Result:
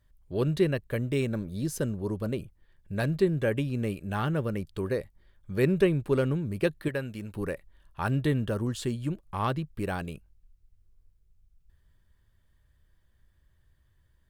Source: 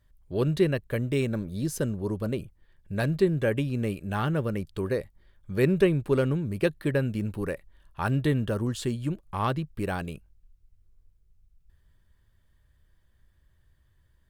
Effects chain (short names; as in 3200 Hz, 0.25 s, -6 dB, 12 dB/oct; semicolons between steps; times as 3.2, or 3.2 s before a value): 6.88–7.35 low shelf 490 Hz -8.5 dB; gain -1.5 dB